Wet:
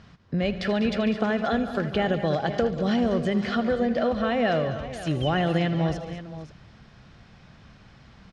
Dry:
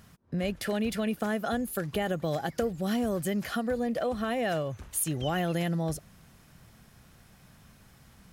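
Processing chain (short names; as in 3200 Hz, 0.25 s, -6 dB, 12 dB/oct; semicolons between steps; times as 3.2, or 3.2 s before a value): LPF 5000 Hz 24 dB/oct; on a send: tapped delay 79/143/197/218/459/528 ms -15.5/-18/-13.5/-17/-20/-13.5 dB; on the sum: gain +5 dB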